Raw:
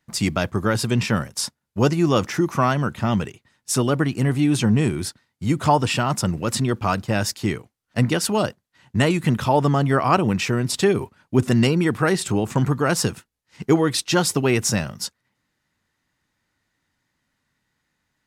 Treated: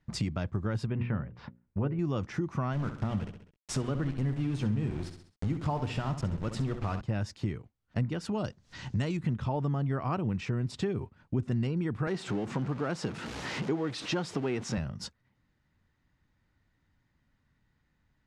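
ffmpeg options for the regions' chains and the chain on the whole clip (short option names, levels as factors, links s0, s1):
-filter_complex "[0:a]asettb=1/sr,asplit=3[s0][s1][s2];[s0]atrim=end=0.864[s3];[s1]atrim=start=0.86:end=1.99,asetpts=PTS-STARTPTS,afade=t=in:d=0.004:c=qsin,afade=t=out:st=1.126:d=0.004:c=qsin,lowpass=f=2500:w=0.5412,lowpass=f=2500:w=1.3066,bandreject=f=60:t=h:w=6,bandreject=f=120:t=h:w=6,bandreject=f=180:t=h:w=6,bandreject=f=240:t=h:w=6,bandreject=f=300:t=h:w=6,bandreject=f=360:t=h:w=6,bandreject=f=420:t=h:w=6,bandreject=f=480:t=h:w=6,bandreject=f=540:t=h:w=6[s4];[s2]atrim=start=1.986[s5];[s3][s4]acrossfade=d=0.004:c1=hsin:c2=qsin[s6];[s6][s5]acrossfade=d=0.004:c1=qsin:c2=hsin,asettb=1/sr,asplit=3[s7][s8][s9];[s7]atrim=end=2.734[s10];[s8]atrim=start=2.73:end=7.01,asetpts=PTS-STARTPTS,afade=t=in:d=0.004:c=qsin,afade=t=out:st=4.276:d=0.004:c=qsin,bandreject=f=60:t=h:w=6,bandreject=f=120:t=h:w=6,bandreject=f=180:t=h:w=6,bandreject=f=240:t=h:w=6,bandreject=f=300:t=h:w=6,aeval=exprs='val(0)*gte(abs(val(0)),0.0473)':c=same,aecho=1:1:66|132|198|264:0.299|0.107|0.0387|0.0139,atrim=end_sample=188748[s11];[s9]atrim=start=7.006[s12];[s10][s11]acrossfade=d=0.004:c1=hsin:c2=qsin[s13];[s13][s12]acrossfade=d=0.004:c1=qsin:c2=hsin,asettb=1/sr,asplit=3[s14][s15][s16];[s14]atrim=end=8.444[s17];[s15]atrim=start=8.44:end=9.17,asetpts=PTS-STARTPTS,afade=t=in:d=0.004:c=qsin,afade=t=out:st=0.726:d=0.004:c=qsin,equalizer=f=5800:w=0.87:g=12,acompressor=mode=upward:threshold=0.0501:ratio=2.5:attack=3.2:release=140:knee=2.83:detection=peak[s18];[s16]atrim=start=9.166[s19];[s17][s18]acrossfade=d=0.004:c1=hsin:c2=qsin[s20];[s20][s19]acrossfade=d=0.004:c1=qsin:c2=hsin,asettb=1/sr,asplit=3[s21][s22][s23];[s21]atrim=end=12.074[s24];[s22]atrim=start=12.07:end=14.78,asetpts=PTS-STARTPTS,afade=t=in:d=0.004:c=qsin,afade=t=out:st=2.706:d=0.004:c=qsin,aeval=exprs='val(0)+0.5*0.0708*sgn(val(0))':c=same,highpass=210,highshelf=f=11000:g=-11[s25];[s23]atrim=start=14.776[s26];[s24][s25]acrossfade=d=0.004:c1=hsin:c2=qsin[s27];[s27][s26]acrossfade=d=0.004:c1=qsin:c2=hsin,lowpass=9000,aemphasis=mode=reproduction:type=bsi,acompressor=threshold=0.0355:ratio=3,volume=0.668"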